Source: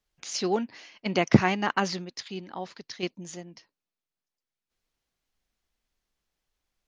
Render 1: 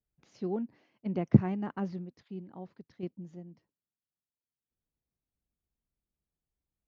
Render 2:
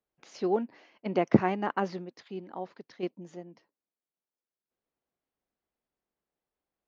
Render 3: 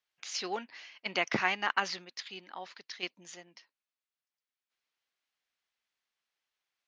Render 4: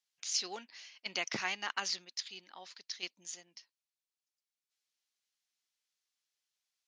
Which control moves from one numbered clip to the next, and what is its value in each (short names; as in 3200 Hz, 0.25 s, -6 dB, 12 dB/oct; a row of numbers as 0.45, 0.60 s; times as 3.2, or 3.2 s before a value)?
band-pass, frequency: 110, 440, 2300, 6000 Hz